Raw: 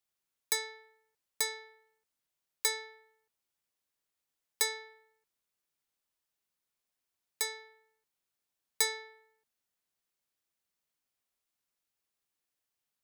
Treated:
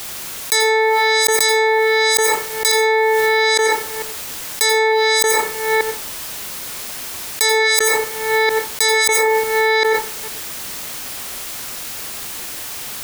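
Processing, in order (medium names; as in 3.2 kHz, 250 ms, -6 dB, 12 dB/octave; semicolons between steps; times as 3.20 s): chunks repeated in reverse 447 ms, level -9 dB; reverberation RT60 0.45 s, pre-delay 77 ms, DRR 13.5 dB; loudness maximiser +23 dB; level flattener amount 100%; trim -5.5 dB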